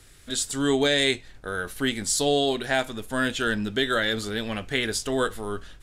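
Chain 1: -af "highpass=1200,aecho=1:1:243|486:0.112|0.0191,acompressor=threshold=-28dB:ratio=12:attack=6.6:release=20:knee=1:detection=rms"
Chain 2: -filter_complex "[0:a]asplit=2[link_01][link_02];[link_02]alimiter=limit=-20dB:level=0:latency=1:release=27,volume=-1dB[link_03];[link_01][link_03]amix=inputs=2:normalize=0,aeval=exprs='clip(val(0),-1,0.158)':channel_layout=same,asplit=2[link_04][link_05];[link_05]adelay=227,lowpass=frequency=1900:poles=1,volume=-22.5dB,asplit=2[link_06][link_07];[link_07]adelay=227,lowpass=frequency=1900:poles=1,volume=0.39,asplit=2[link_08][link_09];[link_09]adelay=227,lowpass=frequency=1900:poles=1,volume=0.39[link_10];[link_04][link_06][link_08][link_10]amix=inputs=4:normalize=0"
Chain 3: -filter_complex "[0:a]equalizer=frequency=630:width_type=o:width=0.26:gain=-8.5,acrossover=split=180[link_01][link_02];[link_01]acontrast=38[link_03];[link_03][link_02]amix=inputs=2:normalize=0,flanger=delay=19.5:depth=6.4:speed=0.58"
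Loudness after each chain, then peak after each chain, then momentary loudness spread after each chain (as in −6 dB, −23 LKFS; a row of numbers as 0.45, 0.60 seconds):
−31.5, −22.5, −28.5 LKFS; −15.0, −7.0, −11.5 dBFS; 7, 7, 10 LU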